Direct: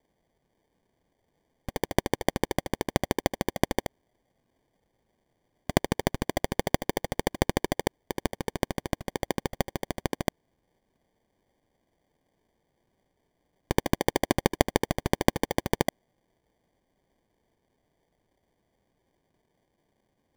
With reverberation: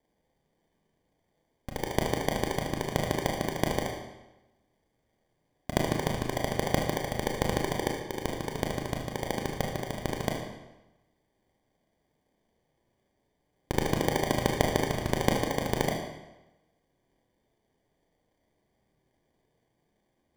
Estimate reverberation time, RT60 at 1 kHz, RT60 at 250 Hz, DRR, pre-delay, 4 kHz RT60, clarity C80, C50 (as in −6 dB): 1.0 s, 1.0 s, 1.0 s, 0.0 dB, 25 ms, 0.90 s, 5.5 dB, 3.5 dB